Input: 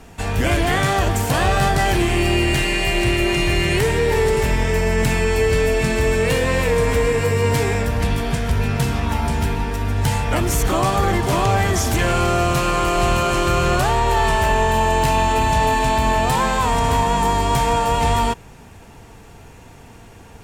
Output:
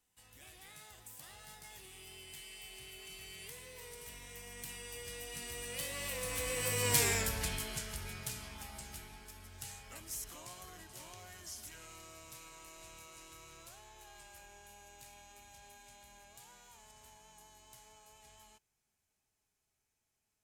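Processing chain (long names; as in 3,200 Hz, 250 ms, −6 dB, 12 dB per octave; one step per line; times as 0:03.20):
source passing by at 0:07.07, 28 m/s, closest 8.7 metres
first-order pre-emphasis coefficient 0.9
level +2.5 dB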